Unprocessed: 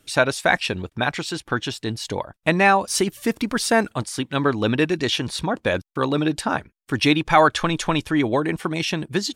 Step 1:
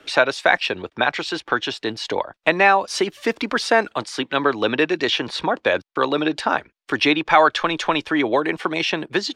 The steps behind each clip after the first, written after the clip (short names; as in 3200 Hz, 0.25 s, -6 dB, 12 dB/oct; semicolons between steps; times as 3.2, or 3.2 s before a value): three-band isolator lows -16 dB, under 310 Hz, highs -20 dB, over 5400 Hz; three-band squash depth 40%; gain +3.5 dB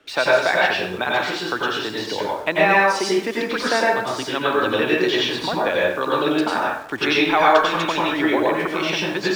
plate-style reverb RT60 0.65 s, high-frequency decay 0.75×, pre-delay 80 ms, DRR -4.5 dB; in parallel at -10.5 dB: bit-crush 5-bit; on the sum: gain -7.5 dB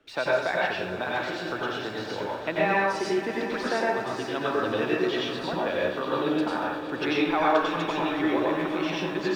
tilt -1.5 dB/oct; swelling echo 0.117 s, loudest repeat 5, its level -18 dB; gain -8.5 dB